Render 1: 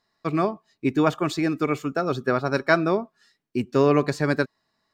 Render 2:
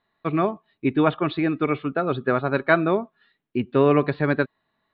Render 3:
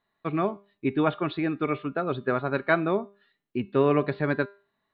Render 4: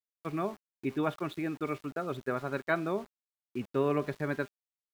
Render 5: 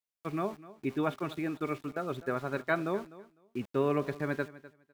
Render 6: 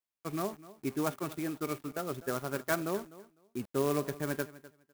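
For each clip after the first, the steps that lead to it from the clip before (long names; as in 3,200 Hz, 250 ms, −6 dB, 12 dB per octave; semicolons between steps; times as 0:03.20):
Butterworth low-pass 3,900 Hz 72 dB per octave; level +1 dB
tuned comb filter 200 Hz, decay 0.38 s, harmonics all, mix 50%; level +1 dB
centre clipping without the shift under −40.5 dBFS; level −7 dB
repeating echo 252 ms, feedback 17%, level −18 dB
converter with an unsteady clock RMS 0.058 ms; level −1.5 dB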